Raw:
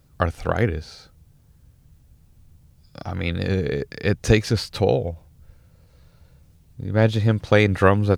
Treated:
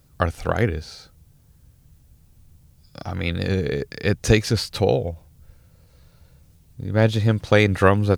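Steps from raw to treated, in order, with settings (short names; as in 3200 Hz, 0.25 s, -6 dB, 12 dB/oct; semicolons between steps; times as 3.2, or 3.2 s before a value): high shelf 4700 Hz +5 dB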